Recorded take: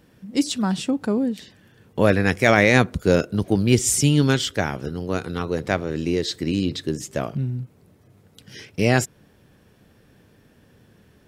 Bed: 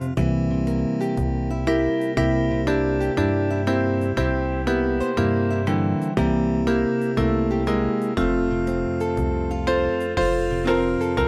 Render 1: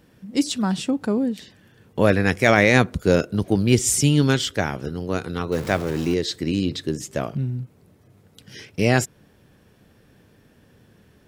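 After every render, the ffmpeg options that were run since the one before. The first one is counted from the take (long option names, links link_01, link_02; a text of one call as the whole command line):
ffmpeg -i in.wav -filter_complex "[0:a]asettb=1/sr,asplit=3[link_01][link_02][link_03];[link_01]atrim=end=5.524[link_04];[link_02]atrim=start=5.52:end=6.14,asetpts=PTS-STARTPTS,afade=type=in:duration=0.004:curve=qsin,afade=type=out:start_time=0.616:duration=0.004:curve=qsin,aeval=exprs='val(0)+0.5*0.0299*sgn(val(0))':channel_layout=same[link_05];[link_03]atrim=start=6.136[link_06];[link_04][link_05]acrossfade=duration=0.004:curve1=hsin:curve2=qsin[link_07];[link_07][link_06]acrossfade=duration=0.004:curve1=qsin:curve2=hsin" out.wav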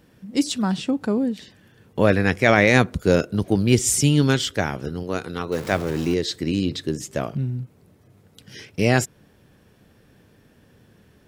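ffmpeg -i in.wav -filter_complex "[0:a]asettb=1/sr,asplit=3[link_01][link_02][link_03];[link_01]atrim=end=0.684[link_04];[link_02]atrim=start=0.68:end=2.67,asetpts=PTS-STARTPTS,afade=type=in:duration=0.004:curve=qsin,afade=type=out:start_time=1.986:duration=0.004:curve=qsin,acrossover=split=5700[link_05][link_06];[link_06]acompressor=threshold=-46dB:ratio=4:attack=1:release=60[link_07];[link_05][link_07]amix=inputs=2:normalize=0[link_08];[link_03]atrim=start=2.666[link_09];[link_04][link_08]acrossfade=duration=0.004:curve1=hsin:curve2=qsin[link_10];[link_10][link_09]acrossfade=duration=0.004:curve1=qsin:curve2=hsin,asettb=1/sr,asplit=3[link_11][link_12][link_13];[link_11]atrim=end=5.034[link_14];[link_12]atrim=start=5.03:end=5.72,asetpts=PTS-STARTPTS,afade=type=in:duration=0.004:curve=qsin,afade=type=out:start_time=0.686:duration=0.004:curve=qsin,lowshelf=frequency=180:gain=-6.5[link_15];[link_13]atrim=start=5.716[link_16];[link_14][link_15]acrossfade=duration=0.004:curve1=hsin:curve2=qsin[link_17];[link_17][link_16]acrossfade=duration=0.004:curve1=qsin:curve2=hsin" out.wav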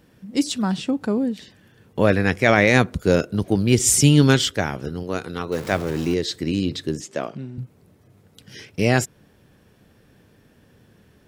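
ffmpeg -i in.wav -filter_complex "[0:a]asettb=1/sr,asplit=3[link_01][link_02][link_03];[link_01]atrim=end=7.004[link_04];[link_02]atrim=start=7:end=7.58,asetpts=PTS-STARTPTS,afade=type=in:duration=0.004:curve=qsin,afade=type=out:start_time=0.576:duration=0.004:curve=qsin,highpass=240,lowpass=7600[link_05];[link_03]atrim=start=7.576[link_06];[link_04][link_05]acrossfade=duration=0.004:curve1=hsin:curve2=qsin[link_07];[link_07][link_06]acrossfade=duration=0.004:curve1=qsin:curve2=hsin,asplit=3[link_08][link_09][link_10];[link_08]atrim=end=3.802[link_11];[link_09]atrim=start=3.798:end=4.502,asetpts=PTS-STARTPTS,volume=3.5dB[link_12];[link_10]atrim=start=4.498[link_13];[link_11][link_12]acrossfade=duration=0.004:curve1=hsin:curve2=hsin[link_14];[link_14][link_13]acrossfade=duration=0.004:curve1=hsin:curve2=hsin" out.wav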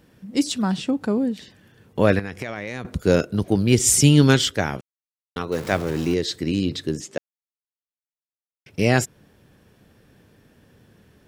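ffmpeg -i in.wav -filter_complex "[0:a]asettb=1/sr,asplit=3[link_01][link_02][link_03];[link_01]atrim=end=2.194[link_04];[link_02]atrim=start=2.19:end=2.85,asetpts=PTS-STARTPTS,afade=type=in:duration=0.004:curve=qsin,afade=type=out:start_time=0.656:duration=0.004:curve=qsin,acompressor=threshold=-26dB:ratio=8:attack=3.2:release=140:knee=1:detection=peak[link_05];[link_03]atrim=start=2.846[link_06];[link_04][link_05]acrossfade=duration=0.004:curve1=hsin:curve2=qsin[link_07];[link_07][link_06]acrossfade=duration=0.004:curve1=qsin:curve2=hsin,asplit=5[link_08][link_09][link_10][link_11][link_12];[link_08]atrim=end=4.81,asetpts=PTS-STARTPTS,afade=type=out:start_time=4.806:duration=0.004:curve=hsin[link_13];[link_09]atrim=start=4.81:end=5.36,asetpts=PTS-STARTPTS,volume=0[link_14];[link_10]atrim=start=5.36:end=7.18,asetpts=PTS-STARTPTS,afade=type=in:duration=0.004:curve=hsin,afade=type=out:start_time=1.816:duration=0.004:curve=hsin[link_15];[link_11]atrim=start=7.18:end=8.66,asetpts=PTS-STARTPTS,volume=0[link_16];[link_12]atrim=start=8.66,asetpts=PTS-STARTPTS,afade=type=in:duration=0.004:curve=hsin[link_17];[link_13][link_14][link_15][link_16][link_17]concat=n=5:v=0:a=1" out.wav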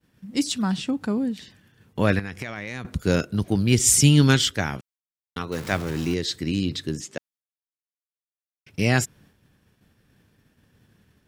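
ffmpeg -i in.wav -af "agate=range=-33dB:threshold=-49dB:ratio=3:detection=peak,equalizer=frequency=500:width=0.9:gain=-6.5" out.wav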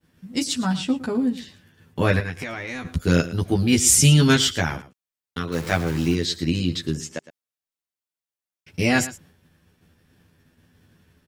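ffmpeg -i in.wav -filter_complex "[0:a]asplit=2[link_01][link_02];[link_02]adelay=12,volume=-2dB[link_03];[link_01][link_03]amix=inputs=2:normalize=0,aecho=1:1:111:0.158" out.wav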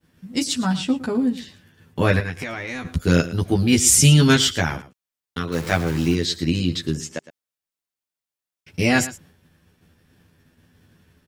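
ffmpeg -i in.wav -af "volume=1.5dB,alimiter=limit=-2dB:level=0:latency=1" out.wav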